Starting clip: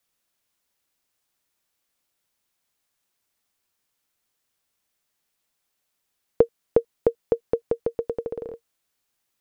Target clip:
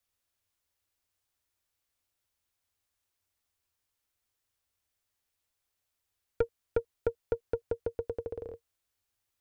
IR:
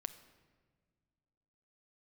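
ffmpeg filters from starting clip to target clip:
-af "aeval=exprs='(tanh(4.47*val(0)+0.2)-tanh(0.2))/4.47':c=same,lowshelf=f=120:t=q:w=3:g=6.5,volume=0.501"

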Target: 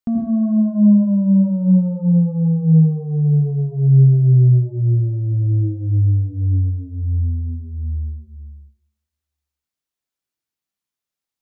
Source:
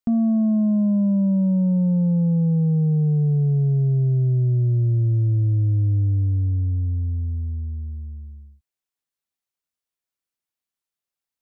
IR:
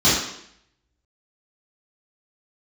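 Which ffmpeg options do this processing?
-filter_complex "[0:a]asplit=2[s0][s1];[1:a]atrim=start_sample=2205,adelay=80[s2];[s1][s2]afir=irnorm=-1:irlink=0,volume=0.0596[s3];[s0][s3]amix=inputs=2:normalize=0"

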